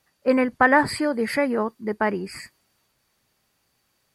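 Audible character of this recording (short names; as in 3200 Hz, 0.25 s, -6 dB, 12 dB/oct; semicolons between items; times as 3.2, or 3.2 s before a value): noise floor -71 dBFS; spectral tilt -3.0 dB/oct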